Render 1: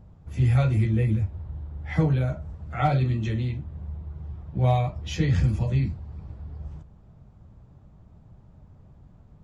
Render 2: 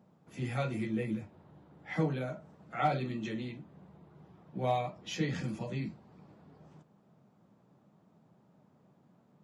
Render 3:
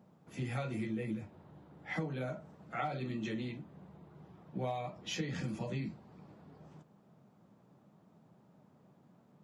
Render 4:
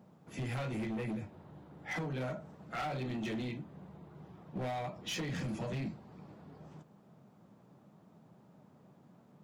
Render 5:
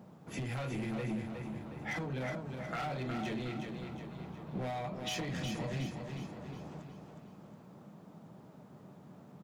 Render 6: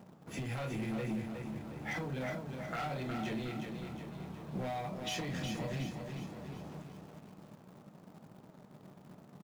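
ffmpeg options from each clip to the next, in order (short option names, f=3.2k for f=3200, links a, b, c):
-af "highpass=f=180:w=0.5412,highpass=f=180:w=1.3066,volume=-4.5dB"
-af "acompressor=threshold=-34dB:ratio=12,volume=1dB"
-af "asoftclip=type=hard:threshold=-37dB,volume=3dB"
-filter_complex "[0:a]acompressor=threshold=-42dB:ratio=6,asplit=2[a][b];[b]aecho=0:1:364|728|1092|1456|1820|2184:0.501|0.236|0.111|0.052|0.0245|0.0115[c];[a][c]amix=inputs=2:normalize=0,volume=5.5dB"
-filter_complex "[0:a]asplit=2[a][b];[b]adelay=27,volume=-12dB[c];[a][c]amix=inputs=2:normalize=0,asplit=2[d][e];[e]acrusher=bits=7:mix=0:aa=0.000001,volume=-10.5dB[f];[d][f]amix=inputs=2:normalize=0,volume=-3dB"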